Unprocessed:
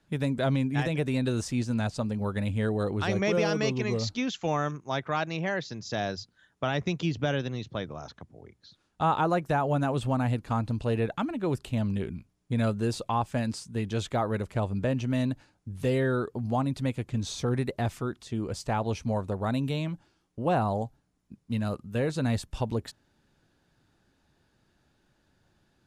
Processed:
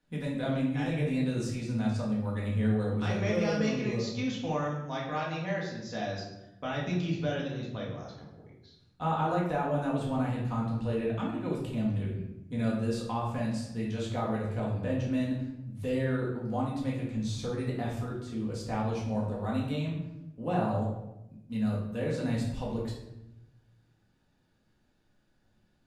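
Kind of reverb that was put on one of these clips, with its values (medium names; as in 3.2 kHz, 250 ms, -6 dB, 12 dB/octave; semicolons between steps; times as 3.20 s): simulated room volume 310 m³, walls mixed, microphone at 1.9 m; trim -10 dB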